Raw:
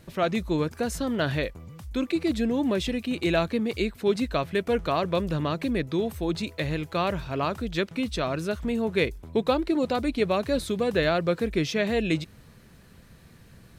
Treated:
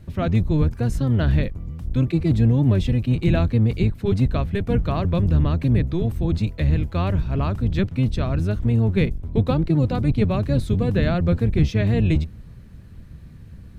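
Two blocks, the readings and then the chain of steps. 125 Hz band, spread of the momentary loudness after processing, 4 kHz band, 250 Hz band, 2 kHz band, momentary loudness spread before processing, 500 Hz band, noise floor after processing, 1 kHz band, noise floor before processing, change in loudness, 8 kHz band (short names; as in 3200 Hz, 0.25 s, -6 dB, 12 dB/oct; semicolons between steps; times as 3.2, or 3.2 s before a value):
+15.5 dB, 4 LU, -4.0 dB, +4.5 dB, -3.0 dB, 5 LU, -1.0 dB, -42 dBFS, -2.5 dB, -52 dBFS, +6.0 dB, n/a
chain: octaver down 1 oct, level +2 dB; tone controls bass +11 dB, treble -4 dB; gain -2.5 dB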